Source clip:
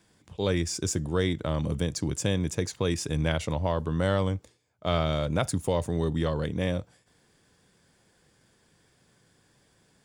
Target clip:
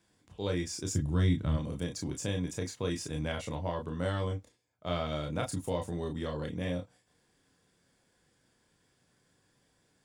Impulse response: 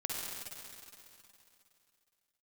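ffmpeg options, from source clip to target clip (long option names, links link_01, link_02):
-filter_complex "[0:a]asplit=3[link_01][link_02][link_03];[link_01]afade=type=out:start_time=0.9:duration=0.02[link_04];[link_02]asubboost=boost=8.5:cutoff=220,afade=type=in:start_time=0.9:duration=0.02,afade=type=out:start_time=1.56:duration=0.02[link_05];[link_03]afade=type=in:start_time=1.56:duration=0.02[link_06];[link_04][link_05][link_06]amix=inputs=3:normalize=0[link_07];[1:a]atrim=start_sample=2205,afade=type=out:start_time=0.13:duration=0.01,atrim=end_sample=6174,asetrate=88200,aresample=44100[link_08];[link_07][link_08]afir=irnorm=-1:irlink=0"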